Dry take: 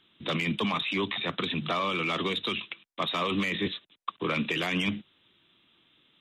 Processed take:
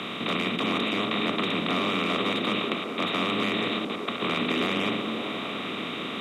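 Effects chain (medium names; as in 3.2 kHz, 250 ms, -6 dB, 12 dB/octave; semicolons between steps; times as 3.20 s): spectral levelling over time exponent 0.2; repeats whose band climbs or falls 191 ms, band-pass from 250 Hz, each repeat 0.7 oct, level 0 dB; frequency shift +16 Hz; trim -7 dB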